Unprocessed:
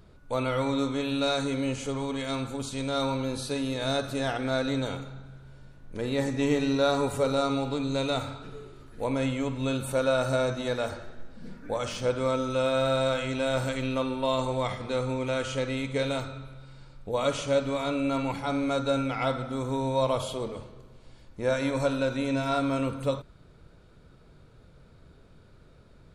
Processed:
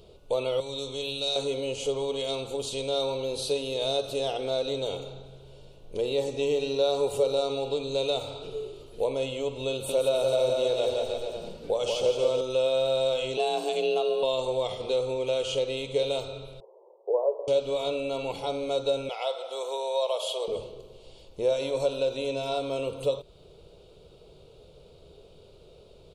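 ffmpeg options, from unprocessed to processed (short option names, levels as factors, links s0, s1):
-filter_complex "[0:a]asettb=1/sr,asplit=3[s0][s1][s2];[s0]atrim=end=0.604[s3];[s1]atrim=start=0.6:end=1.36,asetpts=PTS-STARTPTS,afade=t=in:d=0.004:c=qsin,afade=t=out:st=0.756:d=0.004:c=qsin,acrossover=split=140|3000[s4][s5][s6];[s5]acompressor=threshold=0.00562:ratio=2:attack=3.2:release=140:knee=2.83:detection=peak[s7];[s4][s7][s6]amix=inputs=3:normalize=0[s8];[s2]atrim=start=1.356[s9];[s3][s8]acrossfade=d=0.004:c1=hsin:c2=qsin[s10];[s10][s9]acrossfade=d=0.004:c1=qsin:c2=hsin,asettb=1/sr,asplit=3[s11][s12][s13];[s11]atrim=end=9.724[s14];[s12]atrim=start=9.72:end=12.41,asetpts=PTS-STARTPTS,afade=t=in:d=0.004:c=qsin,afade=t=out:st=2.686:d=0.004:c=qsin,aecho=1:1:170|314.5|437.3|541.7|630.5:0.631|0.398|0.251|0.158|0.1,atrim=end_sample=118629[s15];[s13]atrim=start=12.406[s16];[s14][s15]acrossfade=d=0.004:c1=hsin:c2=qsin[s17];[s17][s16]acrossfade=d=0.004:c1=qsin:c2=hsin,asettb=1/sr,asplit=3[s18][s19][s20];[s18]atrim=end=13.374[s21];[s19]atrim=start=13.37:end=14.23,asetpts=PTS-STARTPTS,afade=t=in:d=0.004:c=qsin,afade=t=out:st=0.856:d=0.004:c=qsin,afreqshift=160[s22];[s20]atrim=start=14.226[s23];[s21][s22]acrossfade=d=0.004:c1=hsin:c2=qsin[s24];[s24][s23]acrossfade=d=0.004:c1=qsin:c2=hsin,asettb=1/sr,asplit=3[s25][s26][s27];[s25]atrim=end=16.604[s28];[s26]atrim=start=16.6:end=17.48,asetpts=PTS-STARTPTS,afade=t=in:d=0.004:c=qsin,afade=t=out:st=0.876:d=0.004:c=qsin,asuperpass=centerf=620:order=20:qfactor=0.84[s29];[s27]atrim=start=17.476[s30];[s28][s29]acrossfade=d=0.004:c1=hsin:c2=qsin[s31];[s31][s30]acrossfade=d=0.004:c1=qsin:c2=hsin,asettb=1/sr,asplit=3[s32][s33][s34];[s32]atrim=end=19.094[s35];[s33]atrim=start=19.09:end=20.48,asetpts=PTS-STARTPTS,afade=t=in:d=0.004:c=qsin,afade=t=out:st=1.386:d=0.004:c=qsin,highpass=f=550:w=0.5412,highpass=f=550:w=1.3066[s36];[s34]atrim=start=20.476[s37];[s35][s36]acrossfade=d=0.004:c1=hsin:c2=qsin[s38];[s38][s37]acrossfade=d=0.004:c1=qsin:c2=hsin,equalizer=f=120:t=o:w=0.22:g=-5,acompressor=threshold=0.0178:ratio=2,firequalizer=gain_entry='entry(160,0);entry(260,-5);entry(410,13);entry(1700,-13);entry(2800,12);entry(5600,6)':delay=0.05:min_phase=1,volume=0.841"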